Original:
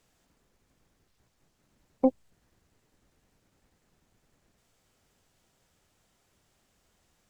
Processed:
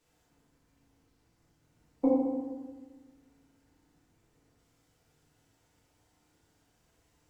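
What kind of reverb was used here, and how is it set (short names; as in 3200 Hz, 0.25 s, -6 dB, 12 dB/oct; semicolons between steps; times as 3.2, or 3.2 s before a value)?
FDN reverb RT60 1.4 s, low-frequency decay 1.25×, high-frequency decay 0.55×, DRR -7 dB; gain -8 dB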